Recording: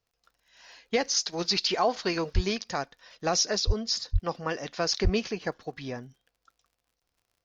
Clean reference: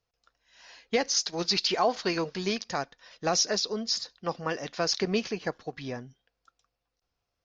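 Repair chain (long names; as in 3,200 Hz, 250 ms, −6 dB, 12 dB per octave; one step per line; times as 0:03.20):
click removal
high-pass at the plosives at 0:02.34/0:03.66/0:04.12/0:05.03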